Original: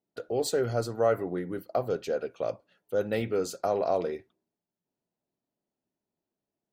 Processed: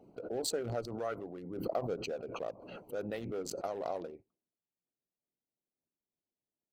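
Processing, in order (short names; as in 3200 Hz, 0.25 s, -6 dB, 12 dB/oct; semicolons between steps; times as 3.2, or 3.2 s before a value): Wiener smoothing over 25 samples; harmonic-percussive split harmonic -12 dB; backwards sustainer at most 45 dB/s; gain -6 dB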